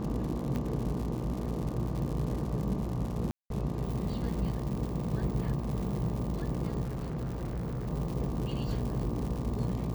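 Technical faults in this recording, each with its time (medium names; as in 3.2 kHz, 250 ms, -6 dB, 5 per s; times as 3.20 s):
buzz 60 Hz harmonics 20 -37 dBFS
crackle 150 per s -36 dBFS
0.56 s: pop -22 dBFS
3.31–3.50 s: dropout 192 ms
6.83–7.88 s: clipped -31.5 dBFS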